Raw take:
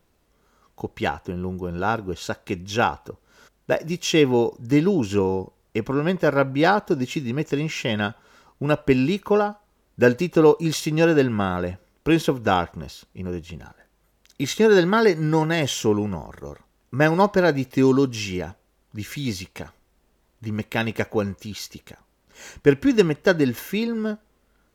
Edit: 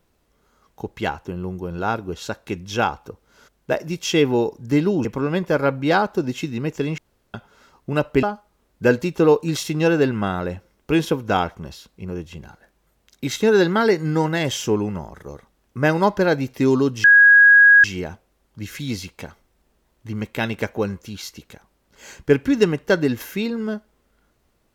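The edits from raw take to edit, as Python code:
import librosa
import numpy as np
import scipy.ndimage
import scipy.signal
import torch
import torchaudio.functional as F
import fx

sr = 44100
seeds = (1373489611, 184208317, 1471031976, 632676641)

y = fx.edit(x, sr, fx.cut(start_s=5.05, length_s=0.73),
    fx.room_tone_fill(start_s=7.71, length_s=0.36),
    fx.cut(start_s=8.96, length_s=0.44),
    fx.insert_tone(at_s=18.21, length_s=0.8, hz=1650.0, db=-7.0), tone=tone)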